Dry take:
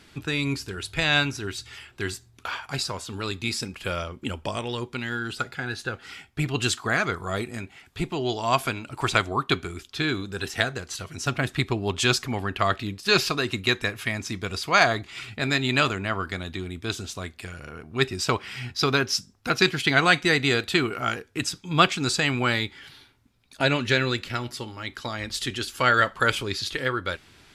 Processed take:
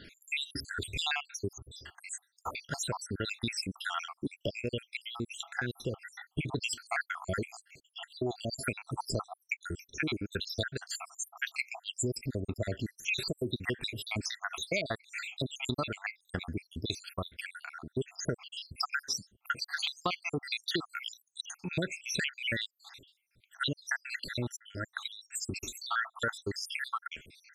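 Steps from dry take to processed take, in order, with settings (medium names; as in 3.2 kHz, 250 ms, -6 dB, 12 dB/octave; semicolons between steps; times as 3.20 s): random holes in the spectrogram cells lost 80%; compression 6:1, threshold -33 dBFS, peak gain reduction 15.5 dB; trim +3 dB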